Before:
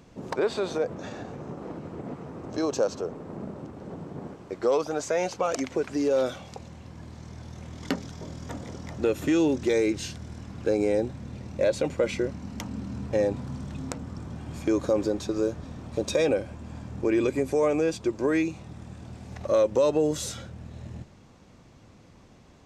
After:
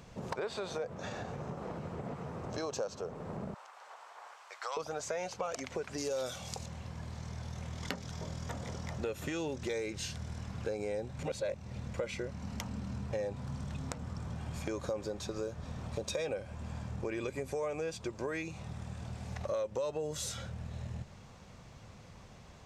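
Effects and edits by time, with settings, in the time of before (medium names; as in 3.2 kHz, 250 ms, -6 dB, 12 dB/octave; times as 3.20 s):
3.54–4.77 s: high-pass 870 Hz 24 dB/octave
5.98–6.66 s: tone controls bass +2 dB, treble +12 dB
11.19–11.94 s: reverse
whole clip: peaking EQ 300 Hz -11 dB 0.76 oct; compression 3:1, threshold -39 dBFS; trim +2 dB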